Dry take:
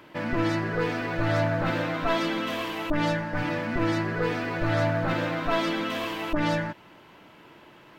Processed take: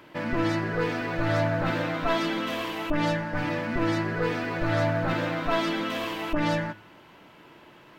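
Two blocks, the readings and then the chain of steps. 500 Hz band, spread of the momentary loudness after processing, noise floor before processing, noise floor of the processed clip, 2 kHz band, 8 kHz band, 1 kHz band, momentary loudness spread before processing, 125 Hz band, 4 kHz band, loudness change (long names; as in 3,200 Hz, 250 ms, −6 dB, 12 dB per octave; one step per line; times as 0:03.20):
0.0 dB, 5 LU, −52 dBFS, −52 dBFS, −0.5 dB, 0.0 dB, 0.0 dB, 5 LU, −0.5 dB, 0.0 dB, 0.0 dB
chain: hum removal 105.2 Hz, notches 34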